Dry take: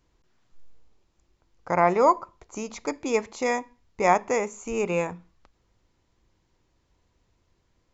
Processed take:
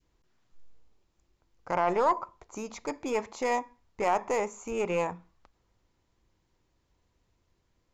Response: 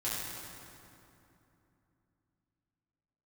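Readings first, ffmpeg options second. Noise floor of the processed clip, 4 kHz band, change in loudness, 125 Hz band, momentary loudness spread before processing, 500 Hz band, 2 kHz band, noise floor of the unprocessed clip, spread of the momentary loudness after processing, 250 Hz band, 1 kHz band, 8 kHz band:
-75 dBFS, -3.5 dB, -5.0 dB, -7.5 dB, 13 LU, -5.0 dB, -6.0 dB, -71 dBFS, 14 LU, -6.0 dB, -4.5 dB, n/a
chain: -af "alimiter=limit=-15.5dB:level=0:latency=1:release=18,aeval=exprs='0.168*(cos(1*acos(clip(val(0)/0.168,-1,1)))-cos(1*PI/2))+0.0299*(cos(2*acos(clip(val(0)/0.168,-1,1)))-cos(2*PI/2))+0.00841*(cos(5*acos(clip(val(0)/0.168,-1,1)))-cos(5*PI/2))':c=same,adynamicequalizer=threshold=0.0126:dfrequency=900:dqfactor=0.96:tfrequency=900:tqfactor=0.96:attack=5:release=100:ratio=0.375:range=3.5:mode=boostabove:tftype=bell,volume=-6dB"

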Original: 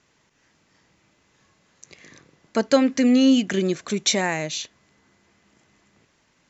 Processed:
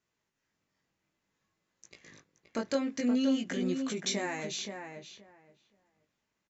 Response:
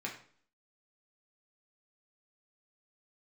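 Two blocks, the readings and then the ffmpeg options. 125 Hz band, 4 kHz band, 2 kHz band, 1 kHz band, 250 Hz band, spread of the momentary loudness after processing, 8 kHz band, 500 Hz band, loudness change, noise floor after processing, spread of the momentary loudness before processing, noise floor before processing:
-11.0 dB, -11.0 dB, -10.5 dB, -11.5 dB, -11.0 dB, 16 LU, n/a, -11.5 dB, -11.5 dB, -84 dBFS, 12 LU, -65 dBFS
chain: -filter_complex "[0:a]agate=range=-14dB:threshold=-48dB:ratio=16:detection=peak,acompressor=threshold=-29dB:ratio=2,flanger=delay=17:depth=5:speed=0.54,asplit=2[a][b];[b]adelay=524,lowpass=f=2.2k:p=1,volume=-6.5dB,asplit=2[c][d];[d]adelay=524,lowpass=f=2.2k:p=1,volume=0.17,asplit=2[e][f];[f]adelay=524,lowpass=f=2.2k:p=1,volume=0.17[g];[a][c][e][g]amix=inputs=4:normalize=0,volume=-2.5dB"

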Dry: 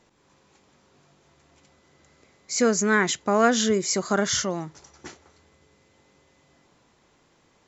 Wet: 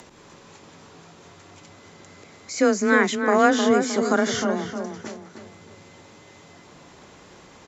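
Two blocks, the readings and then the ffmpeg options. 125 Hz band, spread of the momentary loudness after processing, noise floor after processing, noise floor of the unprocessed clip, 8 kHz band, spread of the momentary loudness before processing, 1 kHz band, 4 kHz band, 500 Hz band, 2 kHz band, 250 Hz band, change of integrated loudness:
-2.5 dB, 17 LU, -49 dBFS, -63 dBFS, n/a, 10 LU, +3.5 dB, -2.0 dB, +3.0 dB, +3.0 dB, +3.5 dB, +1.5 dB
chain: -filter_complex "[0:a]aresample=32000,aresample=44100,acrossover=split=3400[a][b];[b]acompressor=threshold=-33dB:ratio=4:attack=1:release=60[c];[a][c]amix=inputs=2:normalize=0,afreqshift=21,acompressor=mode=upward:threshold=-39dB:ratio=2.5,asplit=2[d][e];[e]adelay=309,lowpass=f=1.9k:p=1,volume=-6dB,asplit=2[f][g];[g]adelay=309,lowpass=f=1.9k:p=1,volume=0.43,asplit=2[h][i];[i]adelay=309,lowpass=f=1.9k:p=1,volume=0.43,asplit=2[j][k];[k]adelay=309,lowpass=f=1.9k:p=1,volume=0.43,asplit=2[l][m];[m]adelay=309,lowpass=f=1.9k:p=1,volume=0.43[n];[f][h][j][l][n]amix=inputs=5:normalize=0[o];[d][o]amix=inputs=2:normalize=0,volume=2dB"

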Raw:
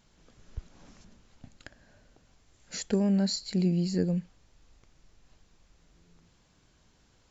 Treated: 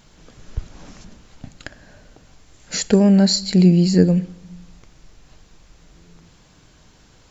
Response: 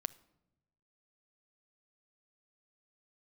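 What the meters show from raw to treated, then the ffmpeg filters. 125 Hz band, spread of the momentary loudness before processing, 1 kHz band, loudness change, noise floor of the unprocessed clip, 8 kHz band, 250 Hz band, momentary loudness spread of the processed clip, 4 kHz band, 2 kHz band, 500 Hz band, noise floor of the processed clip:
+13.0 dB, 21 LU, +13.0 dB, +13.0 dB, -65 dBFS, n/a, +13.0 dB, 21 LU, +13.0 dB, +13.0 dB, +13.0 dB, -52 dBFS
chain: -filter_complex "[0:a]asplit=2[a][b];[1:a]atrim=start_sample=2205[c];[b][c]afir=irnorm=-1:irlink=0,volume=13dB[d];[a][d]amix=inputs=2:normalize=0,volume=-1dB"

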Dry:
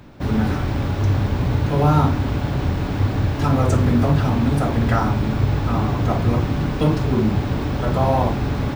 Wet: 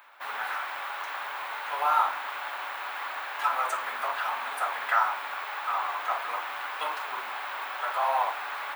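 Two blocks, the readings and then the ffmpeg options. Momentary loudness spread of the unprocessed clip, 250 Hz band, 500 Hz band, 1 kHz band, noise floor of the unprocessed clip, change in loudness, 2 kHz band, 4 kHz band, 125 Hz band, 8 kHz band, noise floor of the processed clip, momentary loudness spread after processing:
5 LU, under -40 dB, -15.0 dB, -1.5 dB, -25 dBFS, -10.5 dB, +1.0 dB, -4.5 dB, under -40 dB, -6.5 dB, -37 dBFS, 9 LU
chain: -af "highpass=f=950:w=0.5412,highpass=f=950:w=1.3066,equalizer=f=5.5k:t=o:w=1.2:g=-14.5,flanger=delay=3.1:depth=9.2:regen=-67:speed=1.6:shape=sinusoidal,volume=7dB"

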